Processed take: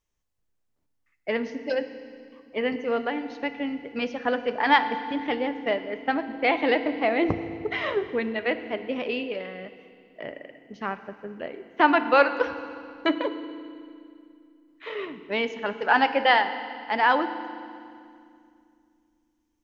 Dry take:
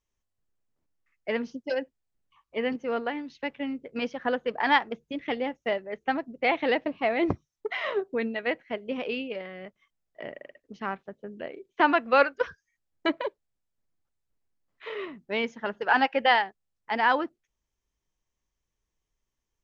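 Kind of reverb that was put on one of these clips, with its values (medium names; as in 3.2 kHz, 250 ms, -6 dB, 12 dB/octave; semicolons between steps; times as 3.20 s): FDN reverb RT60 2.3 s, low-frequency decay 1.55×, high-frequency decay 0.95×, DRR 9.5 dB; trim +2 dB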